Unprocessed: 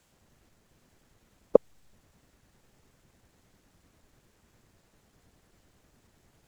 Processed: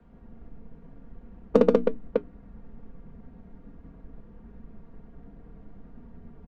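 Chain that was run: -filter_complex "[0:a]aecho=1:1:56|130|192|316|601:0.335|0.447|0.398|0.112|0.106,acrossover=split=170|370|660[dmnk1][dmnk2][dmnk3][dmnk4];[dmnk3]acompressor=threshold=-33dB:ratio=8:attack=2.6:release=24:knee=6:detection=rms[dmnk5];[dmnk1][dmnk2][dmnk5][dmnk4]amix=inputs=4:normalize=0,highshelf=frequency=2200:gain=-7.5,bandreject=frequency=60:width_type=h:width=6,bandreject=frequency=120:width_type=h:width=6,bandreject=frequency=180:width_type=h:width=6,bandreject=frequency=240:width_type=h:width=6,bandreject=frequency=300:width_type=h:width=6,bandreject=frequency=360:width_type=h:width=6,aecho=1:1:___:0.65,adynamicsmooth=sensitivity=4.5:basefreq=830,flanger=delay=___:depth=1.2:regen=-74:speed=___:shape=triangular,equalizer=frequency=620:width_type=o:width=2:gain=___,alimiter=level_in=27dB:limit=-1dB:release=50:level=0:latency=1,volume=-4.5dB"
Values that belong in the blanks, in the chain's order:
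4.3, 5.1, 0.63, -6.5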